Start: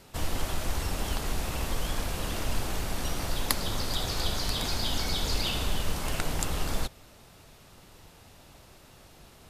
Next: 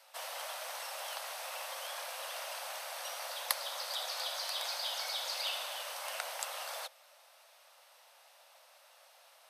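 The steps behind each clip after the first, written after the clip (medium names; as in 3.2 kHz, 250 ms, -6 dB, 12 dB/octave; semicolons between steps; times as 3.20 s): steep high-pass 520 Hz 96 dB/octave; band-stop 7.1 kHz, Q 8.4; trim -4.5 dB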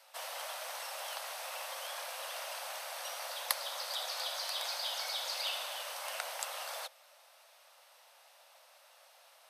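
no audible change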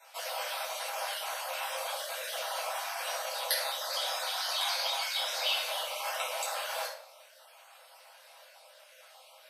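random holes in the spectrogram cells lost 35%; simulated room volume 770 m³, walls furnished, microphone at 7.8 m; trim -1.5 dB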